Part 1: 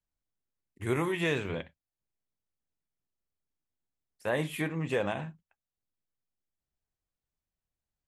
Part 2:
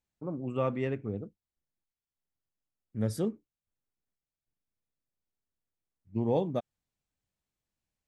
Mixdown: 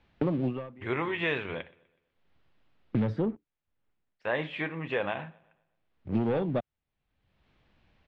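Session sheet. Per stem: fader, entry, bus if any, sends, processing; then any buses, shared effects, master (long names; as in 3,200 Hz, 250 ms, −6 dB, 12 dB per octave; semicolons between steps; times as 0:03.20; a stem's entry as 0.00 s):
+3.0 dB, 0.00 s, no send, echo send −24 dB, low-shelf EQ 410 Hz −9 dB
−2.0 dB, 0.00 s, no send, no echo send, leveller curve on the samples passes 2; multiband upward and downward compressor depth 100%; automatic ducking −22 dB, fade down 0.30 s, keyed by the first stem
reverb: not used
echo: repeating echo 124 ms, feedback 44%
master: low-pass filter 3,400 Hz 24 dB per octave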